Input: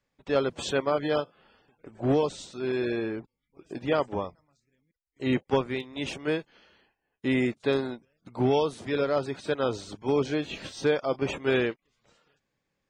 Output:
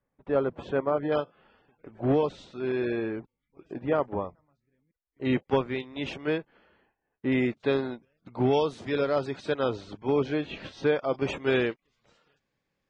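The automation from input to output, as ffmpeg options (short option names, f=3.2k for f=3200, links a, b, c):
-af "asetnsamples=n=441:p=0,asendcmd='1.12 lowpass f 2900;3.74 lowpass f 1700;5.25 lowpass f 3800;6.38 lowpass f 1800;7.32 lowpass f 3800;8.53 lowpass f 5800;9.7 lowpass f 3200;11.14 lowpass f 6200',lowpass=1.4k"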